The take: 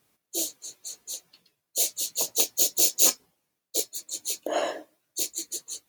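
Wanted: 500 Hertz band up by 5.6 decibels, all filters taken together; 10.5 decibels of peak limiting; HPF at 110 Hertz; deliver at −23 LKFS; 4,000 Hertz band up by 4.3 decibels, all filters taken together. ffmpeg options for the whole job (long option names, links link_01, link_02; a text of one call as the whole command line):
ffmpeg -i in.wav -af "highpass=110,equalizer=frequency=500:width_type=o:gain=7,equalizer=frequency=4000:width_type=o:gain=5,volume=4.5dB,alimiter=limit=-9dB:level=0:latency=1" out.wav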